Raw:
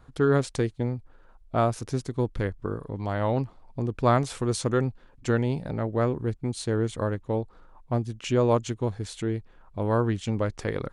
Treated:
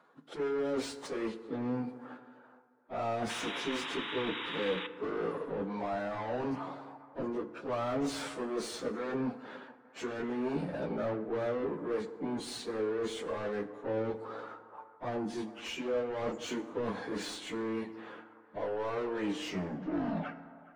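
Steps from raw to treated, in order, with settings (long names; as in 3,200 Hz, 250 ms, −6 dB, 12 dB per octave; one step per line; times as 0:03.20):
turntable brake at the end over 0.76 s
elliptic high-pass filter 170 Hz, stop band 70 dB
noise gate −56 dBFS, range −13 dB
reversed playback
downward compressor 8 to 1, threshold −36 dBFS, peak gain reduction 19.5 dB
reversed playback
mid-hump overdrive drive 25 dB, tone 1,600 Hz, clips at −24 dBFS
time stretch by phase vocoder 1.9×
sound drawn into the spectrogram noise, 0:03.29–0:04.87, 820–3,900 Hz −42 dBFS
in parallel at −11 dB: soft clipping −34.5 dBFS, distortion −13 dB
on the sum: delay with a band-pass on its return 418 ms, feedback 36%, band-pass 930 Hz, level −16.5 dB
feedback delay network reverb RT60 1.6 s, low-frequency decay 1×, high-frequency decay 0.45×, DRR 10.5 dB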